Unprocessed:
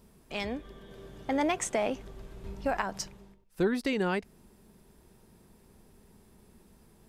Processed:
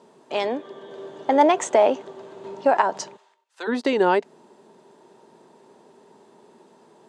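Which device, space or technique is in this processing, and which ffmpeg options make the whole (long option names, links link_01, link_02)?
television speaker: -filter_complex "[0:a]highpass=frequency=190:width=0.5412,highpass=frequency=190:width=1.3066,equalizer=frequency=200:width_type=q:width=4:gain=-8,equalizer=frequency=400:width_type=q:width=4:gain=5,equalizer=frequency=600:width_type=q:width=4:gain=6,equalizer=frequency=910:width_type=q:width=4:gain=9,equalizer=frequency=2300:width_type=q:width=4:gain=-5,equalizer=frequency=5300:width_type=q:width=4:gain=-6,lowpass=frequency=7300:width=0.5412,lowpass=frequency=7300:width=1.3066,asplit=3[link_01][link_02][link_03];[link_01]afade=type=out:start_time=3.16:duration=0.02[link_04];[link_02]highpass=1300,afade=type=in:start_time=3.16:duration=0.02,afade=type=out:start_time=3.67:duration=0.02[link_05];[link_03]afade=type=in:start_time=3.67:duration=0.02[link_06];[link_04][link_05][link_06]amix=inputs=3:normalize=0,volume=7.5dB"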